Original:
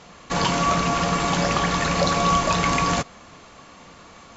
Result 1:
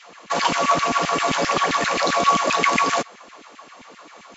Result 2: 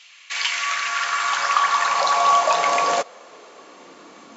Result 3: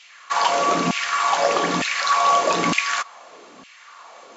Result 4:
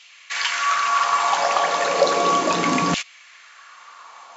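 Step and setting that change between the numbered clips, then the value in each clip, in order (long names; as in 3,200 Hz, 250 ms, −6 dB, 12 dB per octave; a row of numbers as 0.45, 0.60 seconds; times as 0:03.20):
auto-filter high-pass, speed: 7.6, 0.21, 1.1, 0.34 Hertz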